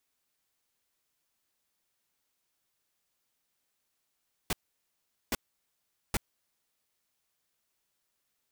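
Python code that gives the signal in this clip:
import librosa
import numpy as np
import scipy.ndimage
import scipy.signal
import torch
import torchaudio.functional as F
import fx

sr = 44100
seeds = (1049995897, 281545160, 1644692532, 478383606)

y = fx.noise_burst(sr, seeds[0], colour='pink', on_s=0.03, off_s=0.79, bursts=3, level_db=-29.0)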